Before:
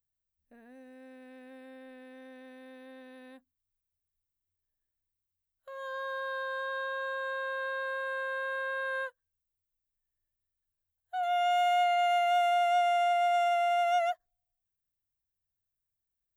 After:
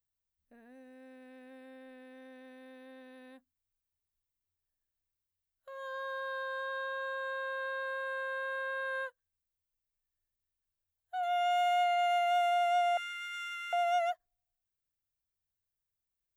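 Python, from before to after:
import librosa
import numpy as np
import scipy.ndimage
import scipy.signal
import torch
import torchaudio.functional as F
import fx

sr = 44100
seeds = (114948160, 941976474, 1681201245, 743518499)

y = fx.cheby1_bandstop(x, sr, low_hz=220.0, high_hz=1300.0, order=4, at=(12.97, 13.73))
y = y * 10.0 ** (-2.5 / 20.0)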